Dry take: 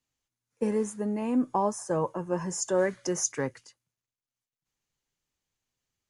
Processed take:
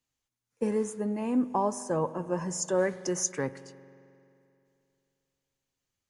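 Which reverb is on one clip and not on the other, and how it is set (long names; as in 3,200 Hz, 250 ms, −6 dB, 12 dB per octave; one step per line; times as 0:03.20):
spring reverb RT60 2.7 s, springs 44 ms, chirp 35 ms, DRR 15.5 dB
level −1 dB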